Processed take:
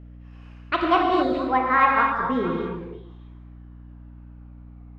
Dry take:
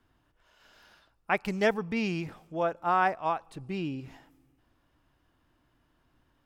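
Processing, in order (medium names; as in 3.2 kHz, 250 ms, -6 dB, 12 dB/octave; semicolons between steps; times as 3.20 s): gliding tape speed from 188% -> 71%; low-pass 1.8 kHz 12 dB/octave; on a send: repeats whose band climbs or falls 156 ms, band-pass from 160 Hz, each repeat 1.4 oct, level -7 dB; on the sum: gated-style reverb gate 290 ms flat, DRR -0.5 dB; hum 60 Hz, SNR 18 dB; trim +6.5 dB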